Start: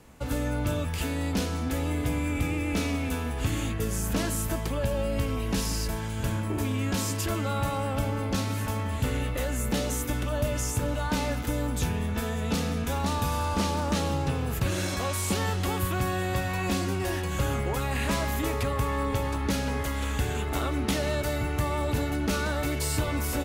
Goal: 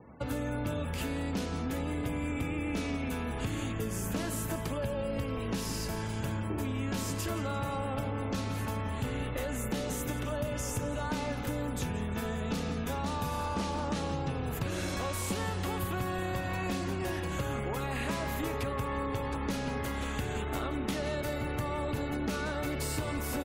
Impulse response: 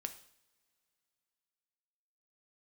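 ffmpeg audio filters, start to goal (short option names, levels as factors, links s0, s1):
-filter_complex "[0:a]highpass=84,equalizer=f=8000:w=0.36:g=-3,asplit=8[s0][s1][s2][s3][s4][s5][s6][s7];[s1]adelay=171,afreqshift=-35,volume=0.237[s8];[s2]adelay=342,afreqshift=-70,volume=0.145[s9];[s3]adelay=513,afreqshift=-105,volume=0.0881[s10];[s4]adelay=684,afreqshift=-140,volume=0.0537[s11];[s5]adelay=855,afreqshift=-175,volume=0.0327[s12];[s6]adelay=1026,afreqshift=-210,volume=0.02[s13];[s7]adelay=1197,afreqshift=-245,volume=0.0122[s14];[s0][s8][s9][s10][s11][s12][s13][s14]amix=inputs=8:normalize=0,acompressor=threshold=0.0158:ratio=2.5,afftfilt=real='re*gte(hypot(re,im),0.002)':imag='im*gte(hypot(re,im),0.002)':win_size=1024:overlap=0.75,volume=1.33"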